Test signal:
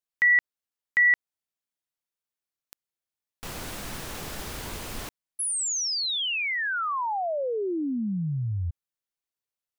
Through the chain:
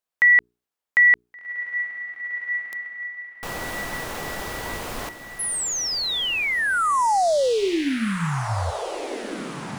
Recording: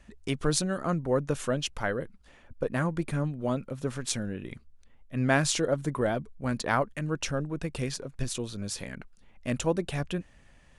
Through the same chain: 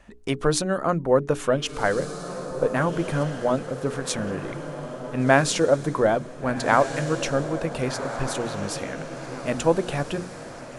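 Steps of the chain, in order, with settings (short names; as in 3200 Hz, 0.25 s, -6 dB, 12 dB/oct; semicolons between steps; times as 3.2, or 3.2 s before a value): bell 730 Hz +7.5 dB 2.7 oct; notches 60/120/180/240/300/360/420 Hz; diffused feedback echo 1.52 s, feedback 49%, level -10 dB; gain +1.5 dB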